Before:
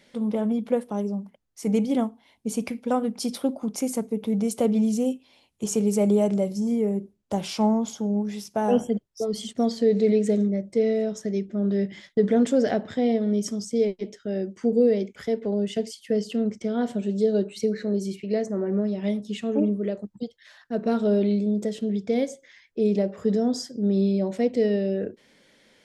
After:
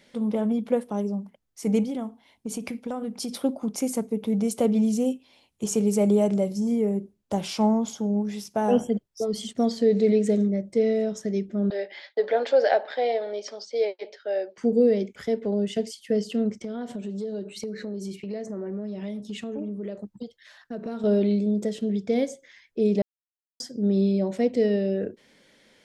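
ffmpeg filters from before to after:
-filter_complex "[0:a]asettb=1/sr,asplit=3[a][b][c];[a]atrim=end=1.834[d];[b]atrim=start=1.83:end=3.37,asetpts=PTS-STARTPTS,afade=t=in:d=0.004:c=qsin,afade=t=out:st=1.536:d=0.004:c=qsin,acompressor=threshold=-27dB:ratio=6:attack=3.2:release=140:knee=1:detection=peak[e];[c]atrim=start=3.366[f];[d][e]acrossfade=d=0.004:c1=hsin:c2=qsin[g];[g][f]acrossfade=d=0.004:c1=qsin:c2=hsin,asettb=1/sr,asplit=3[h][i][j];[h]atrim=end=11.704[k];[i]atrim=start=11.7:end=14.58,asetpts=PTS-STARTPTS,afade=t=in:d=0.004:c=qsin,afade=t=out:st=2.876:d=0.004:c=qsin,highpass=f=450:w=0.5412,highpass=f=450:w=1.3066,equalizer=f=580:t=q:w=4:g=7,equalizer=f=830:t=q:w=4:g=9,equalizer=f=1.6k:t=q:w=4:g=6,equalizer=f=2.4k:t=q:w=4:g=5,equalizer=f=4.4k:t=q:w=4:g=9,lowpass=f=4.8k:w=0.5412,lowpass=f=4.8k:w=1.3066[l];[j]atrim=start=14.576[m];[k][l]acrossfade=d=0.004:c1=hsin:c2=qsin[n];[n][m]acrossfade=d=0.004:c1=qsin:c2=hsin,asettb=1/sr,asplit=3[o][p][q];[o]atrim=end=16.644[r];[p]atrim=start=16.64:end=21.04,asetpts=PTS-STARTPTS,afade=t=in:d=0.004:c=qsin,afade=t=out:st=4.396:d=0.004:c=qsin,acompressor=threshold=-30dB:ratio=4:attack=3.2:release=140:knee=1:detection=peak[s];[q]atrim=start=21.036[t];[r][s]acrossfade=d=0.004:c1=hsin:c2=qsin[u];[u][t]acrossfade=d=0.004:c1=qsin:c2=hsin,asplit=3[v][w][x];[v]atrim=end=23.02,asetpts=PTS-STARTPTS,afade=t=out:st=23.016:d=0.004:c=hsin[y];[w]atrim=start=23.02:end=23.6,asetpts=PTS-STARTPTS,volume=0[z];[x]atrim=start=23.6,asetpts=PTS-STARTPTS,afade=t=in:d=0.004:c=hsin[aa];[y][z][aa]concat=n=3:v=0:a=1"

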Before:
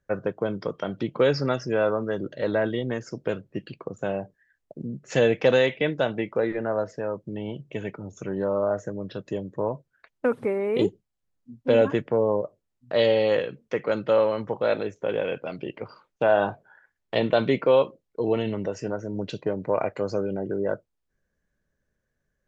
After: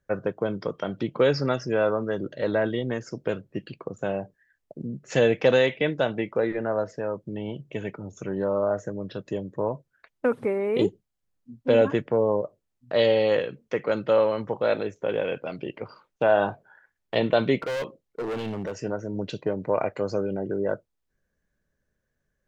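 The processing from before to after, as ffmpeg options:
-filter_complex "[0:a]asettb=1/sr,asplit=3[a][b][c];[a]atrim=end=17.624[d];[b]atrim=start=17.62:end=18.83,asetpts=PTS-STARTPTS,afade=t=in:d=0.004:c=qsin,afade=t=out:st=1.206:d=0.004:c=qsin,asoftclip=type=hard:threshold=-27dB[e];[c]atrim=start=18.826[f];[d][e]acrossfade=d=0.004:c1=hsin:c2=qsin[g];[g][f]acrossfade=d=0.004:c1=qsin:c2=hsin"

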